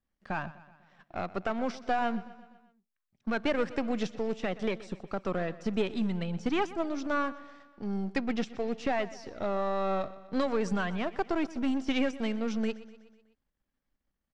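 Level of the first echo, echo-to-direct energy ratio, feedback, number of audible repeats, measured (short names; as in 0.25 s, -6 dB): -17.5 dB, -16.0 dB, 57%, 4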